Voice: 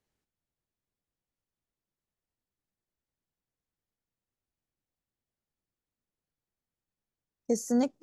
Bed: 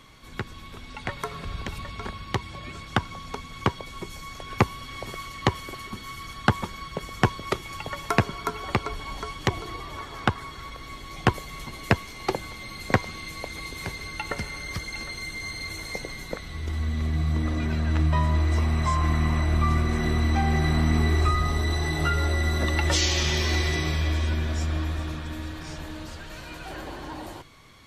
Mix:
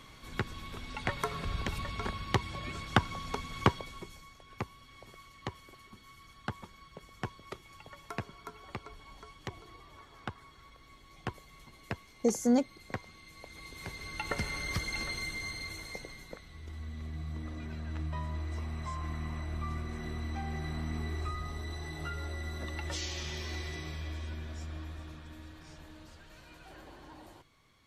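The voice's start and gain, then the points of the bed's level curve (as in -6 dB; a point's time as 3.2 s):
4.75 s, +0.5 dB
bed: 3.68 s -1.5 dB
4.38 s -17 dB
13.25 s -17 dB
14.49 s -1.5 dB
15.11 s -1.5 dB
16.49 s -14.5 dB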